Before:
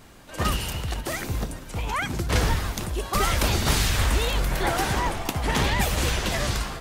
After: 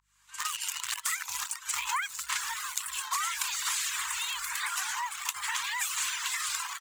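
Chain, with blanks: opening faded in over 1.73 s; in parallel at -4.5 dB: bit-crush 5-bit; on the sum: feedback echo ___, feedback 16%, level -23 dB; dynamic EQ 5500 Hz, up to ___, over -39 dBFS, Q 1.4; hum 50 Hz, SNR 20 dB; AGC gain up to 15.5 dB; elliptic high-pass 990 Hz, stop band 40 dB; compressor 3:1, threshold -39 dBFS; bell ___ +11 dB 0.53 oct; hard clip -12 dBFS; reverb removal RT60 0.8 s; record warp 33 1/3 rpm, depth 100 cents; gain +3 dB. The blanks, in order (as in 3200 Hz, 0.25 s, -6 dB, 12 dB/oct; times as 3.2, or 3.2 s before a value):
0.591 s, -3 dB, 7300 Hz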